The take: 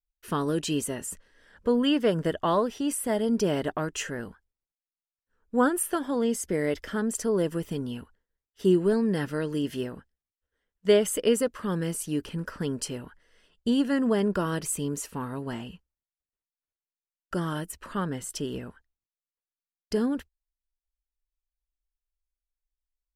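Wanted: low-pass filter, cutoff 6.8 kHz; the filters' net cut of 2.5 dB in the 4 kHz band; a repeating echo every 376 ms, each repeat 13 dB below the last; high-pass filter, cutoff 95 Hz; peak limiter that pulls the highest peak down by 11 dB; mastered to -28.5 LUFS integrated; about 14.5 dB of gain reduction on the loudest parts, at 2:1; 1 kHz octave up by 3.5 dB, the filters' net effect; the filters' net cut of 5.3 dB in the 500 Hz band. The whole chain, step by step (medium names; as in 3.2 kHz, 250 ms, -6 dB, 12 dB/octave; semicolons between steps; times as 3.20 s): high-pass 95 Hz; low-pass 6.8 kHz; peaking EQ 500 Hz -8 dB; peaking EQ 1 kHz +6.5 dB; peaking EQ 4 kHz -4 dB; compression 2:1, threshold -46 dBFS; peak limiter -36.5 dBFS; feedback delay 376 ms, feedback 22%, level -13 dB; trim +17 dB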